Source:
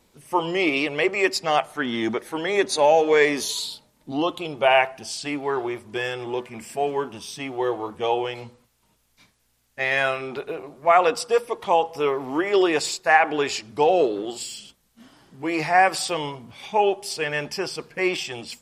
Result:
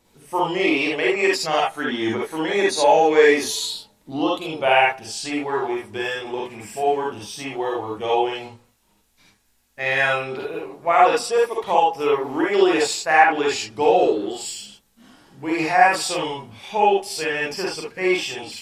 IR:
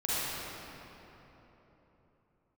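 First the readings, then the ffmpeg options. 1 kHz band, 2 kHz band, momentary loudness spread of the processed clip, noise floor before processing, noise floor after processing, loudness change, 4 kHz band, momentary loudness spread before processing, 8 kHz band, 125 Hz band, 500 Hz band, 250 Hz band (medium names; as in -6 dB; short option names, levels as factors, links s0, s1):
+3.0 dB, +2.5 dB, 13 LU, -66 dBFS, -62 dBFS, +2.5 dB, +2.0 dB, 13 LU, +2.5 dB, +0.5 dB, +2.0 dB, +2.5 dB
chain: -filter_complex "[1:a]atrim=start_sample=2205,afade=t=out:st=0.13:d=0.01,atrim=end_sample=6174[s0];[0:a][s0]afir=irnorm=-1:irlink=0,volume=0.891"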